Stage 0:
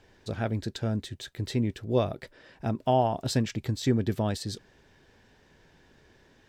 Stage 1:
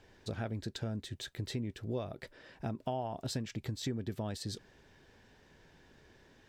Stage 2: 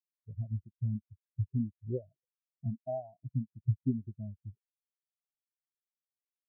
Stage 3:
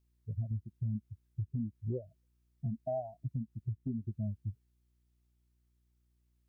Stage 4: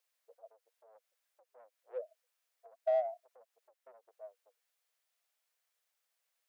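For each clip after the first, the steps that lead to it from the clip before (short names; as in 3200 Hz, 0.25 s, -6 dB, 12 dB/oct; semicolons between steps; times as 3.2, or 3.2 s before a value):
compressor 4:1, threshold -33 dBFS, peak gain reduction 12.5 dB; gain -2 dB
high shelf 2200 Hz -11 dB; spectral expander 4:1; gain +6 dB
compressor, threshold -35 dBFS, peak gain reduction 11.5 dB; limiter -34.5 dBFS, peak gain reduction 7 dB; buzz 60 Hz, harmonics 6, -80 dBFS -9 dB/oct; gain +6.5 dB
in parallel at -7 dB: soft clip -40 dBFS, distortion -8 dB; on the sum: rippled Chebyshev high-pass 470 Hz, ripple 3 dB; gain +4.5 dB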